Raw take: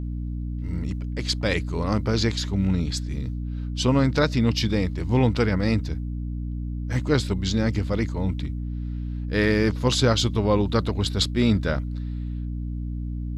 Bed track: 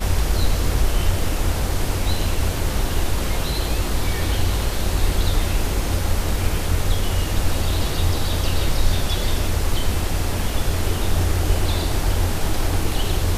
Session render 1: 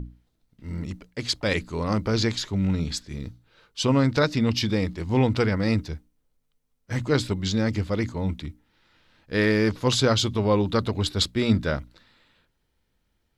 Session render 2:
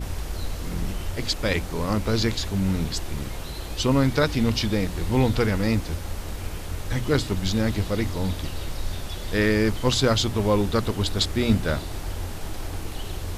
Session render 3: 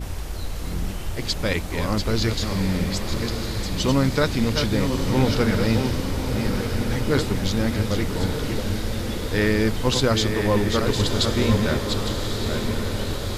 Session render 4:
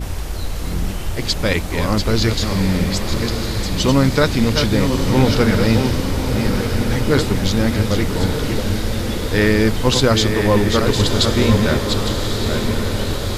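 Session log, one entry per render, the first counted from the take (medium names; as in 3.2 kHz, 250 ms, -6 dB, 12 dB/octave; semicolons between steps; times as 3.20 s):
hum notches 60/120/180/240/300 Hz
add bed track -11 dB
chunks repeated in reverse 551 ms, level -6 dB; echo that smears into a reverb 1224 ms, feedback 56%, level -6.5 dB
trim +5.5 dB; peak limiter -2 dBFS, peak gain reduction 1 dB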